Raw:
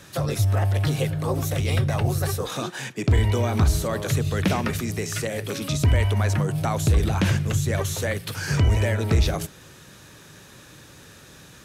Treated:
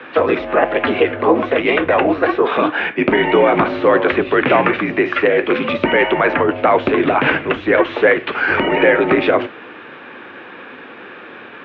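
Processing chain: flange 1.2 Hz, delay 9.2 ms, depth 4.4 ms, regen -72%; mistuned SSB -53 Hz 320–2800 Hz; loudness maximiser +21.5 dB; trim -1 dB

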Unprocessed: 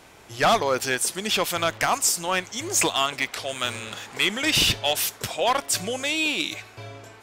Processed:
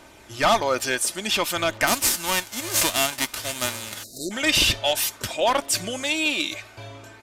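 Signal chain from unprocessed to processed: 1.86–4.17 s: formants flattened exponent 0.3; comb 3.3 ms, depth 40%; 4.03–4.31 s: spectral selection erased 720–3700 Hz; phaser 0.54 Hz, delay 1.9 ms, feedback 24%; resampled via 32 kHz

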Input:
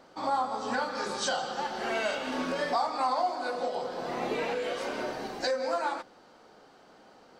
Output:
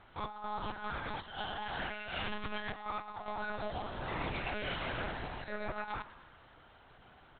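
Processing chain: peaking EQ 480 Hz -12 dB 1.5 oct; compressor with a negative ratio -38 dBFS, ratio -0.5; 0.97–1.63 s: comb of notches 1.3 kHz; frequency-shifting echo 105 ms, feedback 61%, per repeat +94 Hz, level -16 dB; monotone LPC vocoder at 8 kHz 210 Hz

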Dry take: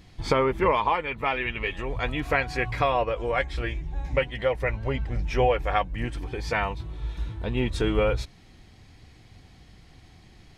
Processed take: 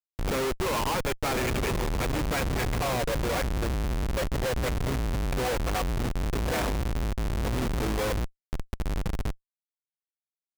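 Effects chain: echo that smears into a reverb 1112 ms, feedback 42%, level -11 dB; Schmitt trigger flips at -28 dBFS

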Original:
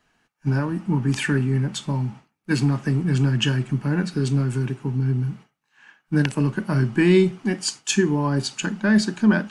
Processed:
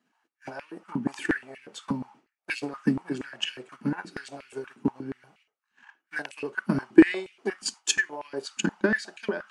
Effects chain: transient shaper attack +12 dB, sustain -1 dB; step-sequenced high-pass 8.4 Hz 230–2500 Hz; trim -12 dB

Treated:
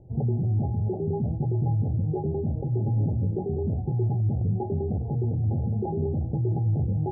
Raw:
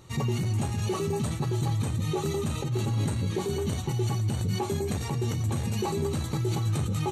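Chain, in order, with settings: Chebyshev low-pass 820 Hz, order 8; bass shelf 110 Hz +7 dB

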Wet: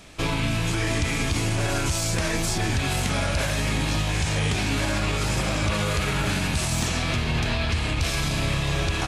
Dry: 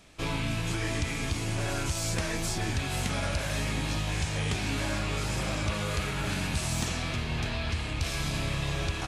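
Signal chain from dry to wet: peak limiter -24.5 dBFS, peak gain reduction 5 dB; trim +9 dB

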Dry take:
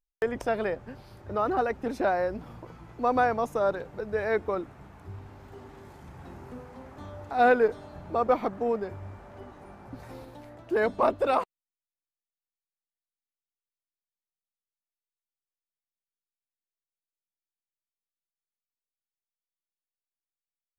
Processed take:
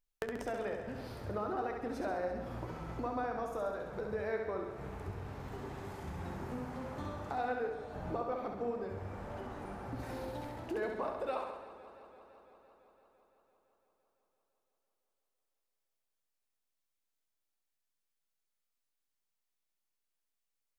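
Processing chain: compression 5:1, threshold -40 dBFS, peak gain reduction 20 dB; flange 0.67 Hz, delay 9.9 ms, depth 7.3 ms, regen -74%; on a send: flutter echo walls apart 11.5 m, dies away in 0.82 s; on the sum: modulated delay 169 ms, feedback 79%, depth 88 cents, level -16 dB; trim +6.5 dB

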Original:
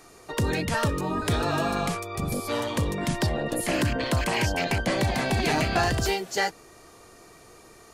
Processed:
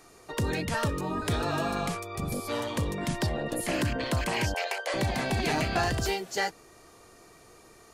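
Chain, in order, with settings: 4.54–4.94 s: steep high-pass 440 Hz 48 dB/octave; trim -3.5 dB

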